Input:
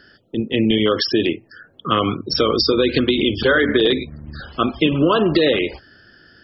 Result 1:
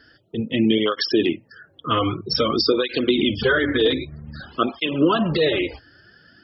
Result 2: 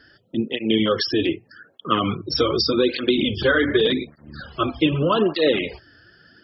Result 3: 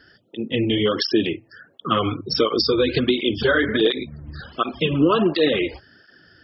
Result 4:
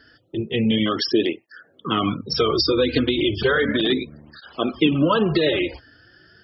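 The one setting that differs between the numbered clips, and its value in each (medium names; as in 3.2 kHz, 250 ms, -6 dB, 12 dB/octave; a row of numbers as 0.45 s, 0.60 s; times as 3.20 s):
cancelling through-zero flanger, nulls at: 0.52 Hz, 0.84 Hz, 1.4 Hz, 0.34 Hz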